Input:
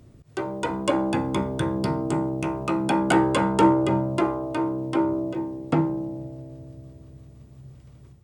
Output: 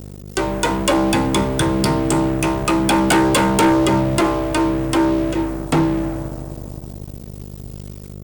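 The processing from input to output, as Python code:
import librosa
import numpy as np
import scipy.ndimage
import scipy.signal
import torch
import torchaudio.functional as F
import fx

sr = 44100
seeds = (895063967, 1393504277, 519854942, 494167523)

y = scipy.signal.lfilter([1.0, -0.8], [1.0], x)
y = fx.add_hum(y, sr, base_hz=50, snr_db=13)
y = fx.leveller(y, sr, passes=5)
y = F.gain(torch.from_numpy(y), 4.0).numpy()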